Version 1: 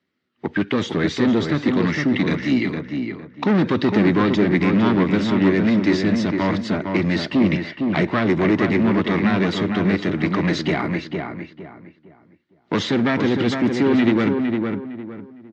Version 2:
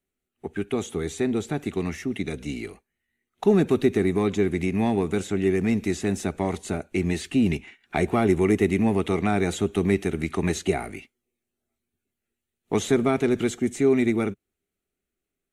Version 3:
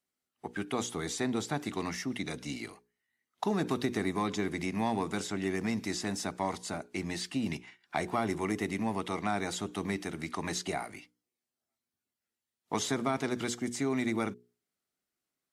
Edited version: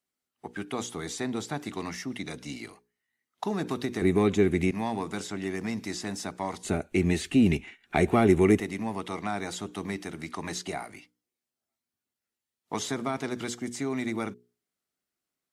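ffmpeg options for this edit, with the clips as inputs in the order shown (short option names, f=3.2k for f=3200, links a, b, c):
-filter_complex "[1:a]asplit=2[a][b];[2:a]asplit=3[c][d][e];[c]atrim=end=4.022[f];[a]atrim=start=4.018:end=4.712[g];[d]atrim=start=4.708:end=6.632[h];[b]atrim=start=6.628:end=8.602[i];[e]atrim=start=8.598[j];[f][g]acrossfade=d=0.004:c1=hsin:c2=hsin[k];[k][h]acrossfade=d=0.004:c1=hsin:c2=hsin[l];[l][i]acrossfade=d=0.004:c1=hsin:c2=hsin[m];[m][j]acrossfade=d=0.004:c1=hsin:c2=hsin"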